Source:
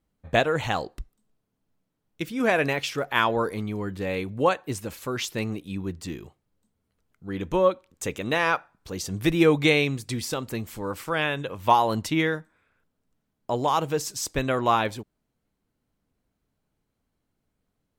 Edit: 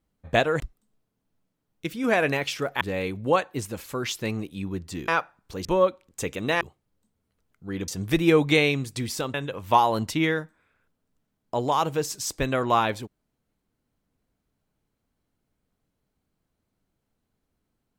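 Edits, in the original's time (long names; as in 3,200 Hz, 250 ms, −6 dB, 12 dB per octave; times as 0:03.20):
0:00.60–0:00.96: remove
0:03.17–0:03.94: remove
0:06.21–0:07.48: swap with 0:08.44–0:09.01
0:10.47–0:11.30: remove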